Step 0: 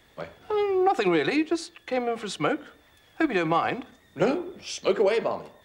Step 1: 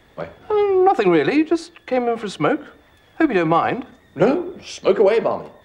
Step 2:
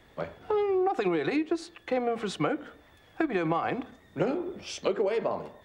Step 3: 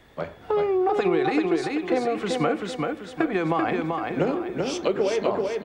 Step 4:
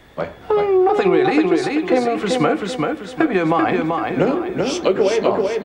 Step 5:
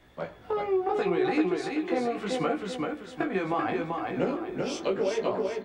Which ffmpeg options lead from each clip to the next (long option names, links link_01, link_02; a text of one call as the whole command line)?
ffmpeg -i in.wav -af "highshelf=frequency=2400:gain=-9,volume=8dB" out.wav
ffmpeg -i in.wav -af "acompressor=threshold=-19dB:ratio=6,volume=-5dB" out.wav
ffmpeg -i in.wav -af "aecho=1:1:387|774|1161|1548|1935:0.668|0.261|0.102|0.0396|0.0155,volume=3.5dB" out.wav
ffmpeg -i in.wav -filter_complex "[0:a]asplit=2[link_01][link_02];[link_02]adelay=16,volume=-12dB[link_03];[link_01][link_03]amix=inputs=2:normalize=0,volume=6.5dB" out.wav
ffmpeg -i in.wav -af "flanger=delay=16:depth=5:speed=0.73,volume=-8dB" out.wav